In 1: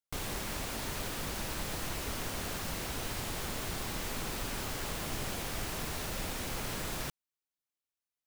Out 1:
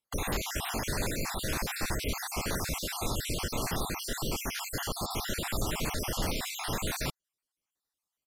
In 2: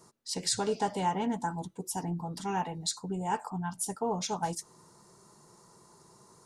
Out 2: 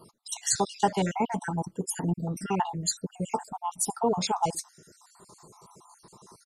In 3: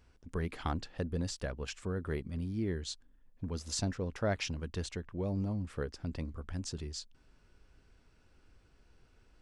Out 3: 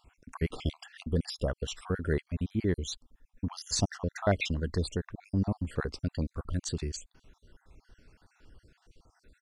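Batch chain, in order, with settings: random spectral dropouts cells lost 52%; downsampling 32000 Hz; gain +7.5 dB

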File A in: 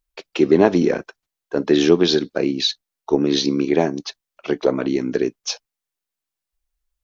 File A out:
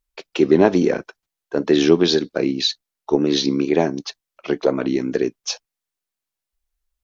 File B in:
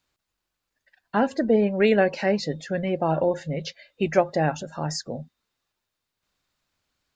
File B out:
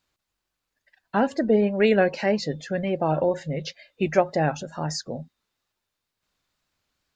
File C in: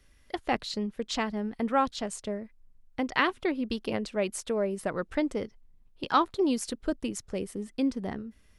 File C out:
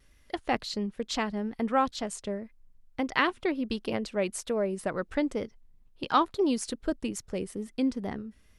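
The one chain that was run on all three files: wow and flutter 46 cents

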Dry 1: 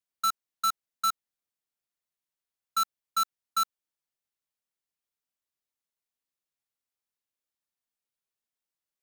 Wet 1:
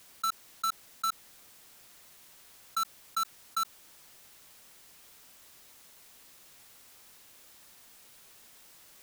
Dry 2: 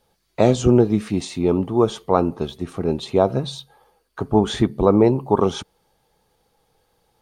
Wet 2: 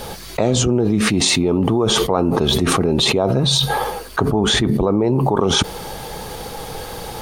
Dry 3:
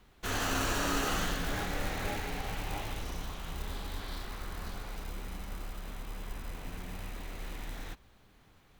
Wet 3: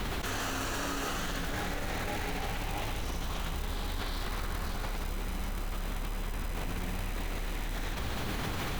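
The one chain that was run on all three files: fast leveller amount 100%; gain -5 dB

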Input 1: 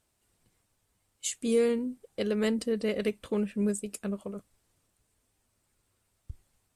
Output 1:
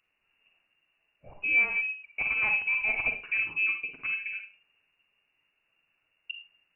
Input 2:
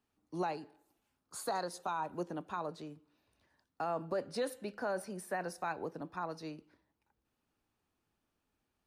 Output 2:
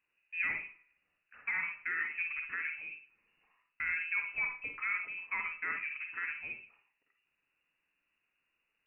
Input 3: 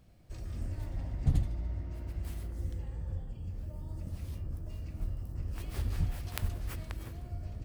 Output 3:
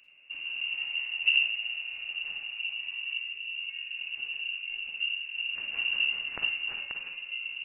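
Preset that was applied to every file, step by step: inverted band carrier 2800 Hz; Schroeder reverb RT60 0.32 s, DRR 4 dB

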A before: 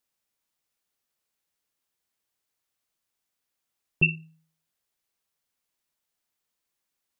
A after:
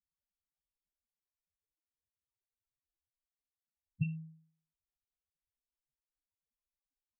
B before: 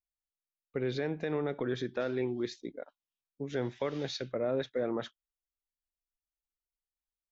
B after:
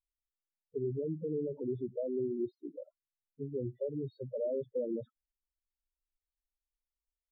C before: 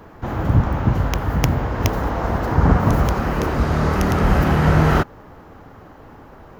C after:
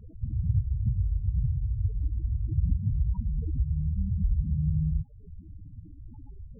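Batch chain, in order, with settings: low shelf 110 Hz +7 dB; compressor 2.5:1, threshold -27 dBFS; loudest bins only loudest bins 4; polynomial smoothing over 65 samples

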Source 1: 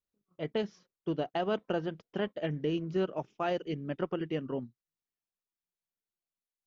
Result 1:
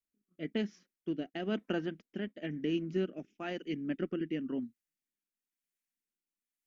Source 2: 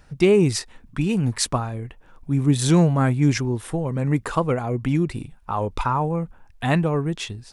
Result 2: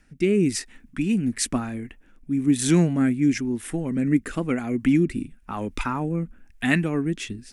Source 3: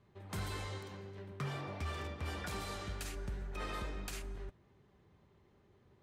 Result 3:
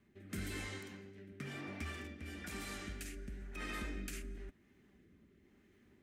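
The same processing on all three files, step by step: rotary speaker horn 1 Hz; low shelf 260 Hz -5.5 dB; vocal rider within 4 dB 2 s; graphic EQ 125/250/500/1000/2000/4000 Hz -10/+9/-9/-11/+4/-7 dB; gain +3.5 dB

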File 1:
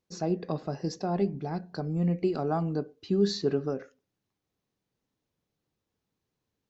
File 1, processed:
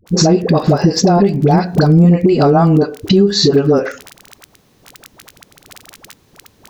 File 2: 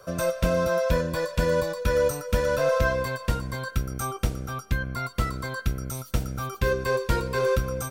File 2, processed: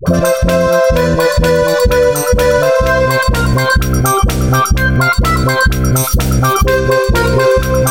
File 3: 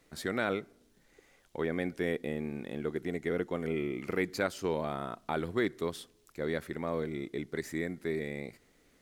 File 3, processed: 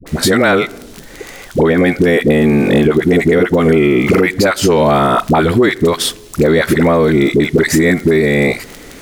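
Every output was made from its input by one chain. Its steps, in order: crackle 20/s -44 dBFS; dispersion highs, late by 65 ms, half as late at 560 Hz; compressor 10:1, threshold -37 dBFS; maximiser +32 dB; gain -1 dB

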